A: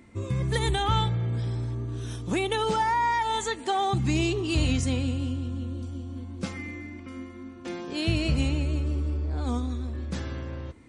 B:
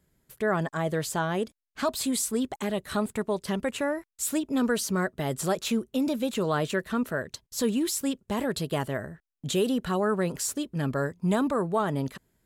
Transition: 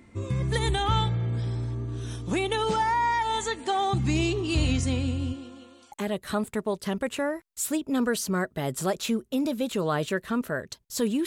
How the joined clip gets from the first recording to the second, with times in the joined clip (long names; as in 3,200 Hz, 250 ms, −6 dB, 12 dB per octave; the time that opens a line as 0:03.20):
A
0:05.32–0:05.92: high-pass filter 250 Hz → 1,100 Hz
0:05.92: continue with B from 0:02.54